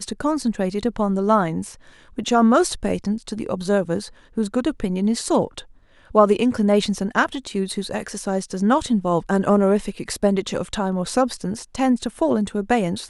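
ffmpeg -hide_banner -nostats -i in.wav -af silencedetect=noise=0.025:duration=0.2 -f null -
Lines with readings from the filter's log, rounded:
silence_start: 1.74
silence_end: 2.18 | silence_duration: 0.44
silence_start: 4.08
silence_end: 4.37 | silence_duration: 0.29
silence_start: 5.60
silence_end: 6.11 | silence_duration: 0.50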